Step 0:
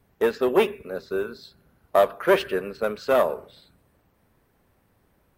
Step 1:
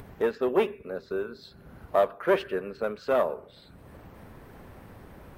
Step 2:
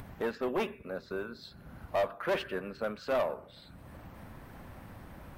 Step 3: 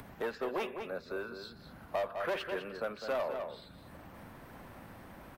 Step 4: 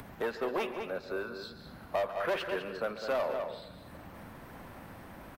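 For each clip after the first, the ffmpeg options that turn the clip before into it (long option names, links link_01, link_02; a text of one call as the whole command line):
ffmpeg -i in.wav -af "highshelf=frequency=3600:gain=-9.5,acompressor=mode=upward:threshold=-25dB:ratio=2.5,volume=-4dB" out.wav
ffmpeg -i in.wav -af "equalizer=frequency=420:width_type=o:width=0.45:gain=-8.5,asoftclip=type=tanh:threshold=-23.5dB" out.wav
ffmpeg -i in.wav -filter_complex "[0:a]asplit=2[link_01][link_02];[link_02]adelay=204.1,volume=-9dB,highshelf=frequency=4000:gain=-4.59[link_03];[link_01][link_03]amix=inputs=2:normalize=0,acrossover=split=170|340[link_04][link_05][link_06];[link_04]acompressor=threshold=-57dB:ratio=4[link_07];[link_05]acompressor=threshold=-53dB:ratio=4[link_08];[link_06]acompressor=threshold=-31dB:ratio=4[link_09];[link_07][link_08][link_09]amix=inputs=3:normalize=0" out.wav
ffmpeg -i in.wav -af "aecho=1:1:140|280|420|560:0.188|0.0848|0.0381|0.0172,volume=2.5dB" out.wav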